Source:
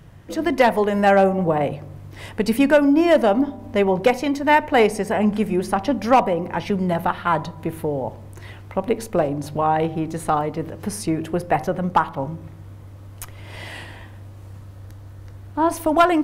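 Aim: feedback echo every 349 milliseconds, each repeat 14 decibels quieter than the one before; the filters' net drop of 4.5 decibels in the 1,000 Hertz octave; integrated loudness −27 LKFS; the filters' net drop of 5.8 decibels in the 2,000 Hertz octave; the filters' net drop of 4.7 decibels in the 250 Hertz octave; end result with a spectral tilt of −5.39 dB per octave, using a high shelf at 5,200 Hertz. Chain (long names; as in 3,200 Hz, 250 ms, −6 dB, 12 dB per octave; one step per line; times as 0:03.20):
parametric band 250 Hz −6 dB
parametric band 1,000 Hz −4.5 dB
parametric band 2,000 Hz −5 dB
high-shelf EQ 5,200 Hz −5.5 dB
repeating echo 349 ms, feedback 20%, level −14 dB
level −3 dB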